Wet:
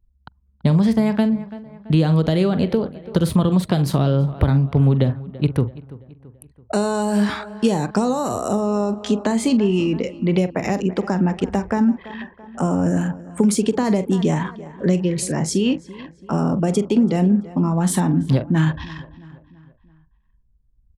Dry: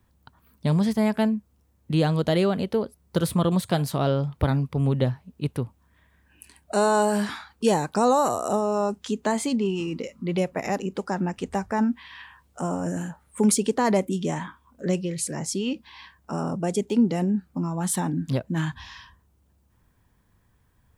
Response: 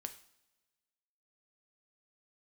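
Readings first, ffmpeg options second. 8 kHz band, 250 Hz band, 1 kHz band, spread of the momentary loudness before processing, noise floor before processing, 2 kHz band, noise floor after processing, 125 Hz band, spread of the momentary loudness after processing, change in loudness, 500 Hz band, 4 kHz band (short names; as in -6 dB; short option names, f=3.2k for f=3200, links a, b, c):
+1.0 dB, +7.0 dB, 0.0 dB, 10 LU, -64 dBFS, +2.5 dB, -59 dBFS, +8.0 dB, 8 LU, +5.5 dB, +3.0 dB, +3.5 dB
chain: -filter_complex "[0:a]lowshelf=f=130:g=3.5,asplit=2[a][b];[b]adelay=44,volume=-12.5dB[c];[a][c]amix=inputs=2:normalize=0,anlmdn=0.251,acompressor=threshold=-21dB:ratio=6,highshelf=f=5.9k:g=-9,asplit=2[d][e];[e]adelay=334,lowpass=f=3.4k:p=1,volume=-19dB,asplit=2[f][g];[g]adelay=334,lowpass=f=3.4k:p=1,volume=0.5,asplit=2[h][i];[i]adelay=334,lowpass=f=3.4k:p=1,volume=0.5,asplit=2[j][k];[k]adelay=334,lowpass=f=3.4k:p=1,volume=0.5[l];[d][f][h][j][l]amix=inputs=5:normalize=0,acrossover=split=370|3000[m][n][o];[n]acompressor=threshold=-32dB:ratio=6[p];[m][p][o]amix=inputs=3:normalize=0,volume=9dB"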